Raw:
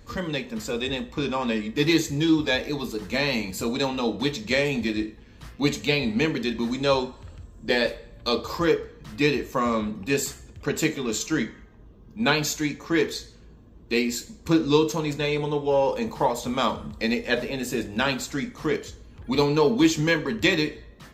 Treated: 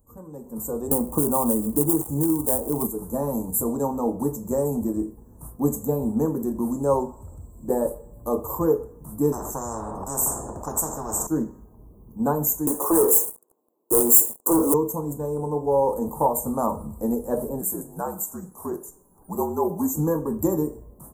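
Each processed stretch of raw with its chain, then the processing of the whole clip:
0.91–2.87 s: dead-time distortion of 0.12 ms + three bands compressed up and down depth 100%
9.32–11.27 s: distance through air 160 m + spectrum-flattening compressor 10:1
12.67–14.74 s: high-pass 360 Hz 24 dB/octave + waveshaping leveller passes 5
17.61–19.94 s: high-pass 670 Hz 6 dB/octave + frequency shift -58 Hz + peaking EQ 3.4 kHz -9 dB 0.51 oct
whole clip: elliptic band-stop 970–9000 Hz, stop band 50 dB; pre-emphasis filter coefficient 0.8; level rider gain up to 15.5 dB

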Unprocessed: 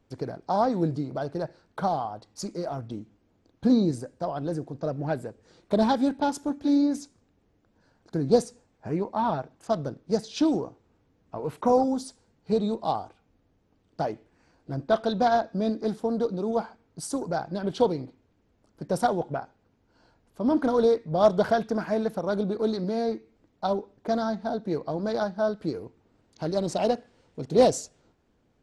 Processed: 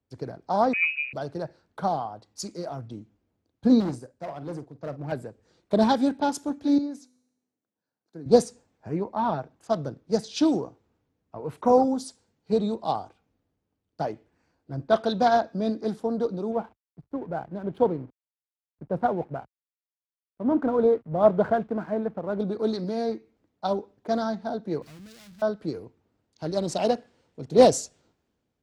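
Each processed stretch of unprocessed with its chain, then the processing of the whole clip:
0.73–1.13 s: high-pass 130 Hz + comb of notches 570 Hz + frequency inversion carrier 2.7 kHz
3.80–5.12 s: hard clipper -26 dBFS + doubling 48 ms -11.5 dB + upward expansion, over -43 dBFS
6.78–8.26 s: high-pass 160 Hz + feedback comb 250 Hz, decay 1.3 s
16.52–22.40 s: distance through air 430 m + hysteresis with a dead band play -44 dBFS
24.82–25.42 s: power-law waveshaper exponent 0.35 + amplifier tone stack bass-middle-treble 6-0-2
whole clip: high-pass 47 Hz; three bands expanded up and down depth 40%

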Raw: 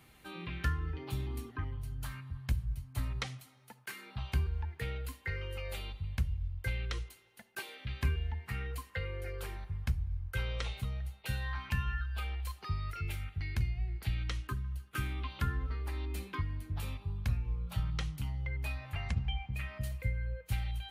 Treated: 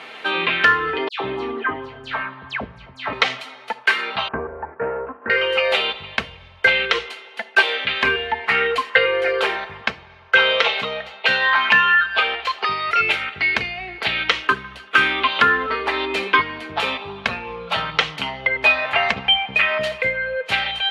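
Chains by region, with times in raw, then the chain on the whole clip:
1.08–3.13 s: tape spacing loss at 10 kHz 23 dB + phase dispersion lows, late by 122 ms, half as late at 2.1 kHz
4.28–5.30 s: comb filter that takes the minimum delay 0.72 ms + Bessel low-pass 900 Hz, order 8 + upward compressor, threshold -53 dBFS
9.81–12.89 s: high-pass 140 Hz 6 dB/octave + peaking EQ 10 kHz -13 dB 0.53 oct
whole clip: Chebyshev band-pass 510–3200 Hz, order 2; comb 4.5 ms, depth 37%; loudness maximiser +28.5 dB; trim -1 dB

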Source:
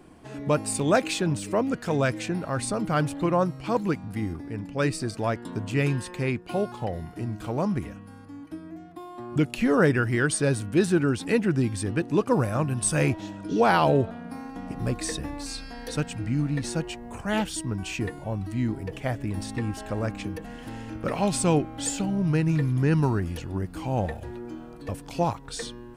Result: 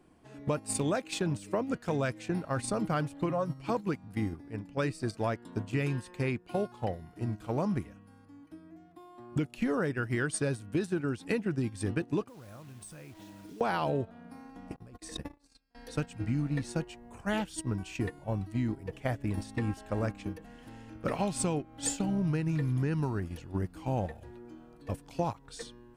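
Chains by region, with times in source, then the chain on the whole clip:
3.29–3.70 s: compression 3:1, threshold -24 dBFS + comb 7.3 ms, depth 73%
12.28–13.61 s: compression 12:1, threshold -33 dBFS + word length cut 8-bit, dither none
14.76–15.75 s: gate -32 dBFS, range -34 dB + compressor with a negative ratio -35 dBFS
whole clip: compression 16:1, threshold -26 dBFS; gate -31 dBFS, range -11 dB

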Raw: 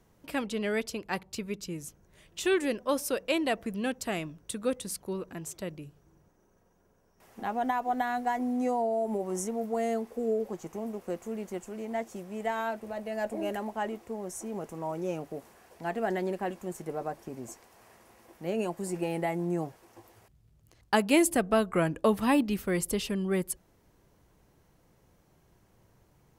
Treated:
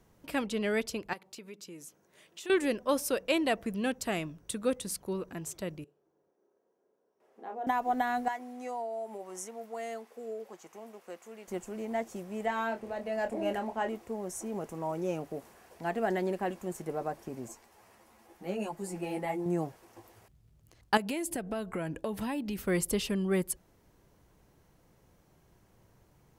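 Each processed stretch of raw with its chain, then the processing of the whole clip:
1.13–2.50 s: high-pass 260 Hz + compression 2.5:1, threshold -46 dBFS
5.84–7.67 s: band-pass filter 410 Hz, Q 1.9 + tilt EQ +3.5 dB/octave + doubling 32 ms -4 dB
8.28–11.48 s: high-pass 1.4 kHz 6 dB/octave + treble shelf 5.1 kHz -6.5 dB
12.45–13.89 s: treble shelf 8.8 kHz -10 dB + doubling 26 ms -7 dB
17.48–19.46 s: peaking EQ 840 Hz +3.5 dB 0.22 oct + three-phase chorus
20.97–22.58 s: band-stop 1.2 kHz, Q 6.2 + compression, threshold -31 dBFS
whole clip: none

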